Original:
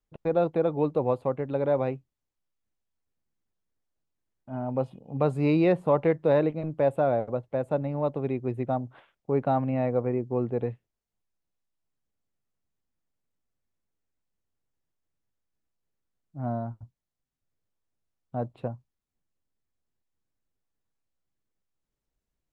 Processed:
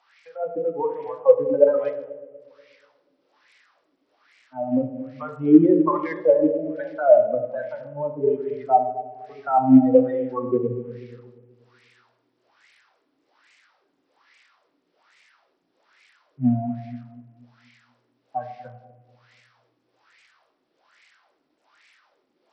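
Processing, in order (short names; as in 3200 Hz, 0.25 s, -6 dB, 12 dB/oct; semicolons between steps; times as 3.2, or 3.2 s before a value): per-bin expansion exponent 3; expander -58 dBFS; HPF 120 Hz 24 dB/oct; band shelf 920 Hz +12 dB 2.4 oct; in parallel at 0 dB: compressor 5:1, threshold -35 dBFS, peak gain reduction 22 dB; on the sum: limiter -24.5 dBFS, peak gain reduction 21.5 dB; AGC gain up to 15 dB; added noise blue -42 dBFS; wah 1.2 Hz 270–2200 Hz, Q 5.3; analogue delay 0.241 s, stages 1024, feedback 41%, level -14 dB; on a send at -5 dB: reverb RT60 1.0 s, pre-delay 3 ms; on the sum: gain +5.5 dB; SBC 64 kbps 44100 Hz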